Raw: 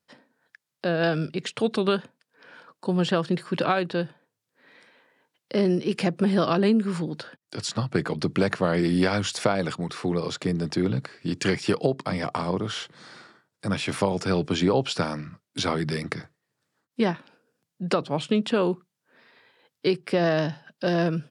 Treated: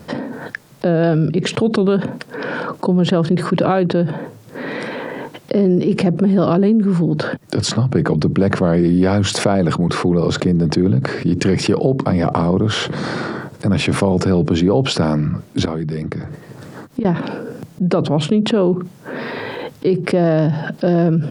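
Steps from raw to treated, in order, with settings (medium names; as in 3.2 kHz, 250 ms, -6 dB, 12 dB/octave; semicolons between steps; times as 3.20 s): tilt shelf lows +8.5 dB; 15.65–17.05 s: inverted gate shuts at -24 dBFS, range -24 dB; level flattener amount 70%; trim -1 dB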